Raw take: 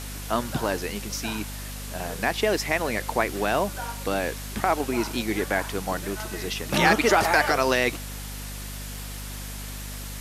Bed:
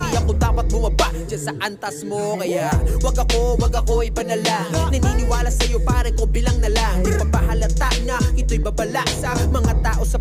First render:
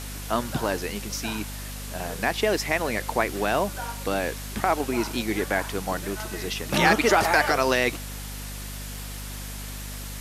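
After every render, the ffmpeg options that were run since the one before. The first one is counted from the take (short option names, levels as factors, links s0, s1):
-af anull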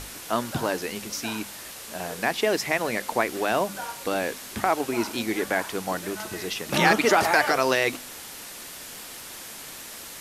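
-af "bandreject=f=50:t=h:w=6,bandreject=f=100:t=h:w=6,bandreject=f=150:t=h:w=6,bandreject=f=200:t=h:w=6,bandreject=f=250:t=h:w=6"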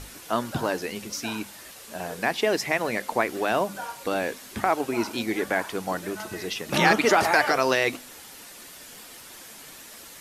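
-af "afftdn=nr=6:nf=-41"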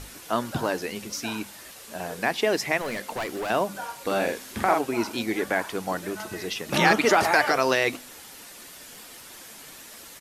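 -filter_complex "[0:a]asettb=1/sr,asplit=3[s0][s1][s2];[s0]atrim=end=2.814[s3];[s1]atrim=start=2.81:end=3.5,asetpts=PTS-STARTPTS,afade=t=in:d=0.004:c=qsin,afade=t=out:st=0.686:d=0.004:c=qsin,volume=21.1,asoftclip=hard,volume=0.0473[s4];[s2]atrim=start=3.496[s5];[s3][s4]acrossfade=d=0.004:c1=hsin:c2=qsin[s6];[s6][s5]acrossfade=d=0.004:c1=qsin:c2=hsin,asplit=3[s7][s8][s9];[s7]afade=t=out:st=4.06:d=0.02[s10];[s8]asplit=2[s11][s12];[s12]adelay=46,volume=0.708[s13];[s11][s13]amix=inputs=2:normalize=0,afade=t=in:st=4.06:d=0.02,afade=t=out:st=4.79:d=0.02[s14];[s9]afade=t=in:st=4.79:d=0.02[s15];[s10][s14][s15]amix=inputs=3:normalize=0"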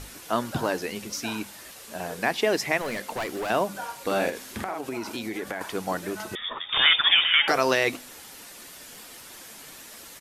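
-filter_complex "[0:a]asettb=1/sr,asplit=3[s0][s1][s2];[s0]atrim=end=4.294[s3];[s1]atrim=start=4.29:end=5.61,asetpts=PTS-STARTPTS,afade=t=in:d=0.004:c=qsin,afade=t=out:st=1.316:d=0.004:c=qsin,acompressor=threshold=0.0398:ratio=5:attack=3.2:release=140:knee=1:detection=peak[s4];[s2]atrim=start=5.606[s5];[s3][s4]acrossfade=d=0.004:c1=hsin:c2=qsin[s6];[s6][s5]acrossfade=d=0.004:c1=qsin:c2=hsin,asettb=1/sr,asplit=3[s7][s8][s9];[s7]atrim=end=6.354[s10];[s8]atrim=start=6.35:end=7.48,asetpts=PTS-STARTPTS,afade=t=in:d=0.004:c=qsin,afade=t=out:st=1.126:d=0.004:c=qsin,lowpass=f=3200:t=q:w=0.5098,lowpass=f=3200:t=q:w=0.6013,lowpass=f=3200:t=q:w=0.9,lowpass=f=3200:t=q:w=2.563,afreqshift=-3800[s11];[s9]atrim=start=7.476[s12];[s10][s11]acrossfade=d=0.004:c1=hsin:c2=qsin[s13];[s13][s12]acrossfade=d=0.004:c1=qsin:c2=hsin"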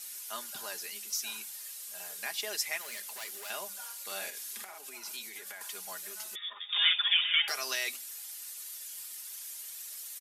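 -af "aderivative,aecho=1:1:4.9:0.6"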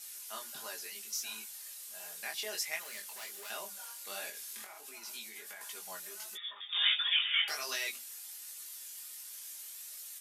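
-af "flanger=delay=18:depth=5.2:speed=1.4"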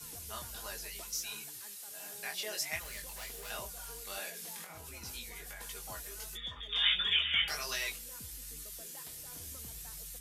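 -filter_complex "[1:a]volume=0.0178[s0];[0:a][s0]amix=inputs=2:normalize=0"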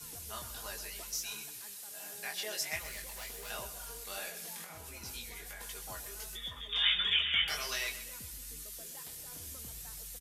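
-af "aecho=1:1:127|254|381|508|635:0.224|0.105|0.0495|0.0232|0.0109"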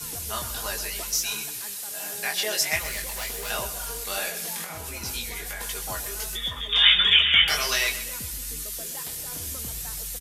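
-af "volume=3.98"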